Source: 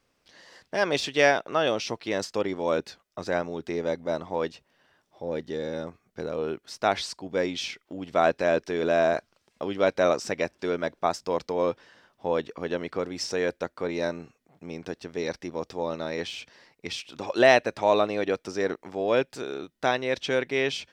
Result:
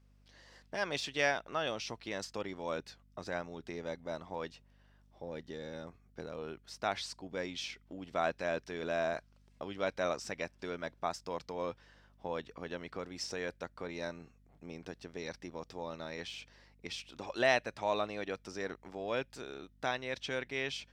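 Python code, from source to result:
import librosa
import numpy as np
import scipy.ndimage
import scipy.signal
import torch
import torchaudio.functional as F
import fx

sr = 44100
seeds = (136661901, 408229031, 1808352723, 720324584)

y = fx.add_hum(x, sr, base_hz=50, snr_db=29)
y = fx.dynamic_eq(y, sr, hz=400.0, q=0.82, threshold_db=-36.0, ratio=4.0, max_db=-6)
y = y * librosa.db_to_amplitude(-8.0)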